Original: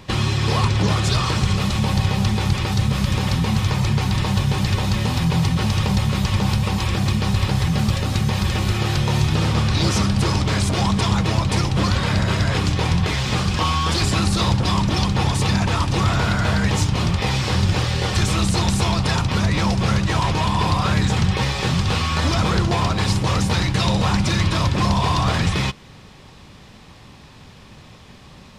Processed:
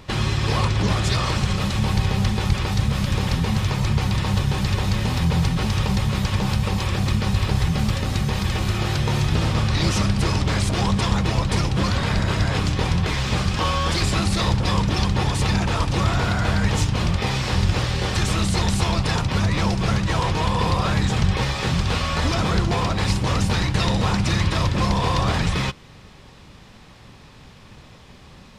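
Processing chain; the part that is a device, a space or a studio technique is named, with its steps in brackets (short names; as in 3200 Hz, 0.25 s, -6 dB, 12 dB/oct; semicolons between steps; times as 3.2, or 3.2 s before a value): octave pedal (harmoniser -12 st -6 dB); gain -2.5 dB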